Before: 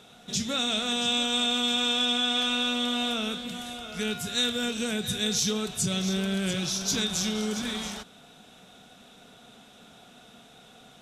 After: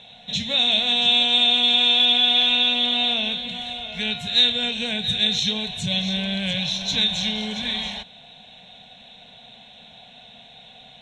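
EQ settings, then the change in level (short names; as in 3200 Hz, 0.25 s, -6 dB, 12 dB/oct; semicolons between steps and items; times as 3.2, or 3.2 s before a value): synth low-pass 4100 Hz, resonance Q 10; fixed phaser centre 1300 Hz, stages 6; +5.0 dB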